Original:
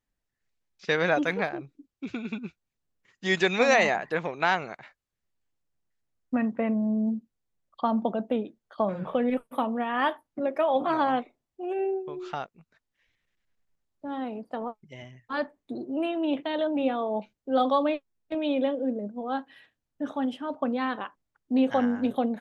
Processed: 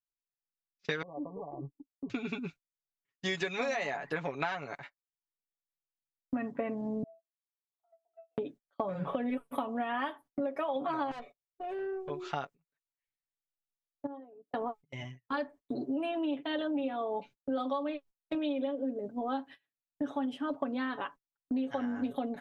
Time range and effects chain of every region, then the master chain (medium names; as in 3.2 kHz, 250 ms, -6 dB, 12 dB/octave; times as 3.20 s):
1.02–2.10 s: compression 12:1, threshold -36 dBFS + brick-wall FIR low-pass 1.2 kHz
7.03–8.38 s: high-pass 610 Hz 24 dB/octave + pitch-class resonator E, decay 0.34 s + compression 2:1, threshold -51 dBFS
11.11–12.10 s: comb 1.7 ms, depth 93% + valve stage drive 29 dB, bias 0.5 + compression 2.5:1, threshold -36 dBFS
14.06–14.54 s: resonances exaggerated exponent 2 + compression, threshold -46 dBFS
whole clip: gate -46 dBFS, range -28 dB; comb 7.1 ms, depth 68%; compression 10:1, threshold -30 dBFS